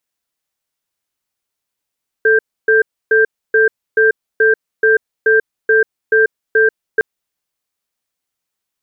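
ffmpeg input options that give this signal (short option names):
-f lavfi -i "aevalsrc='0.299*(sin(2*PI*440*t)+sin(2*PI*1580*t))*clip(min(mod(t,0.43),0.14-mod(t,0.43))/0.005,0,1)':d=4.76:s=44100"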